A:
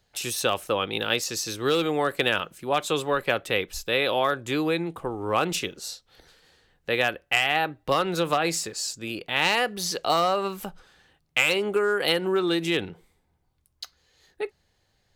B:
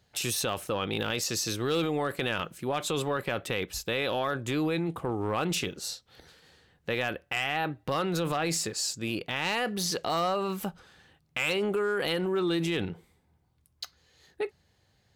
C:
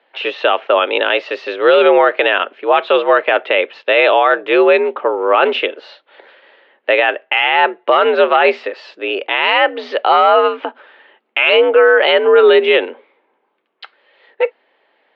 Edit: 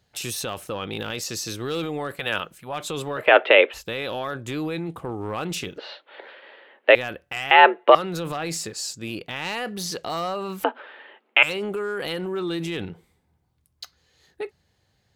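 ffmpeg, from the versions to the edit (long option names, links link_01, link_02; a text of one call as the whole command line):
ffmpeg -i take0.wav -i take1.wav -i take2.wav -filter_complex "[2:a]asplit=4[link_01][link_02][link_03][link_04];[1:a]asplit=6[link_05][link_06][link_07][link_08][link_09][link_10];[link_05]atrim=end=2.37[link_11];[0:a]atrim=start=2.13:end=2.78[link_12];[link_06]atrim=start=2.54:end=3.32[link_13];[link_01]atrim=start=3.16:end=3.86[link_14];[link_07]atrim=start=3.7:end=5.782[link_15];[link_02]atrim=start=5.778:end=6.952[link_16];[link_08]atrim=start=6.948:end=7.512[link_17];[link_03]atrim=start=7.508:end=7.952[link_18];[link_09]atrim=start=7.948:end=10.642[link_19];[link_04]atrim=start=10.638:end=11.432[link_20];[link_10]atrim=start=11.428[link_21];[link_11][link_12]acrossfade=duration=0.24:curve1=tri:curve2=tri[link_22];[link_22][link_13]acrossfade=duration=0.24:curve1=tri:curve2=tri[link_23];[link_23][link_14]acrossfade=duration=0.16:curve1=tri:curve2=tri[link_24];[link_24][link_15]acrossfade=duration=0.16:curve1=tri:curve2=tri[link_25];[link_25][link_16]acrossfade=duration=0.004:curve1=hsin:curve2=hsin[link_26];[link_26][link_17]acrossfade=duration=0.004:curve1=hsin:curve2=hsin[link_27];[link_27][link_18]acrossfade=duration=0.004:curve1=hsin:curve2=hsin[link_28];[link_28][link_19]acrossfade=duration=0.004:curve1=hsin:curve2=hsin[link_29];[link_29][link_20]acrossfade=duration=0.004:curve1=hsin:curve2=hsin[link_30];[link_30][link_21]acrossfade=duration=0.004:curve1=hsin:curve2=hsin" out.wav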